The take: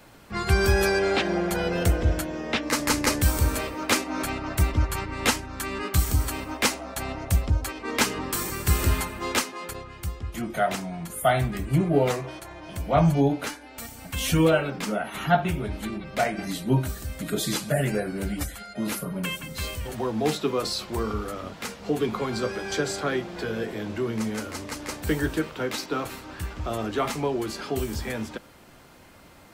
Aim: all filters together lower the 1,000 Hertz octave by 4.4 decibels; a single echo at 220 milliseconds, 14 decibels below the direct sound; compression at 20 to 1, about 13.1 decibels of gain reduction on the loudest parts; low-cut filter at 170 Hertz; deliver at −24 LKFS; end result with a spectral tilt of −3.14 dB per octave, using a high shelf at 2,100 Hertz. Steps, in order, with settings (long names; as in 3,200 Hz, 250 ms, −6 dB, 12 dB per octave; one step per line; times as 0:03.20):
high-pass filter 170 Hz
parametric band 1,000 Hz −8.5 dB
high-shelf EQ 2,100 Hz +7 dB
downward compressor 20 to 1, threshold −28 dBFS
single-tap delay 220 ms −14 dB
level +8.5 dB